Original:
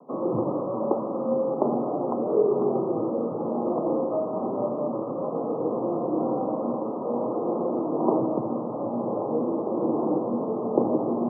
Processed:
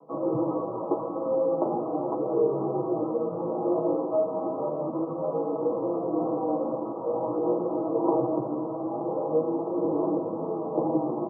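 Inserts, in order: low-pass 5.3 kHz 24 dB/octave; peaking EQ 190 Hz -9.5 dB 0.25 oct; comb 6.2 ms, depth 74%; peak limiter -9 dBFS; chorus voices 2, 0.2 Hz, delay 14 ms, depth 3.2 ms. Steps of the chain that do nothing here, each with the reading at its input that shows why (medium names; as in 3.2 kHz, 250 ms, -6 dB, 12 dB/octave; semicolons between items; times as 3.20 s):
low-pass 5.3 kHz: input has nothing above 1.3 kHz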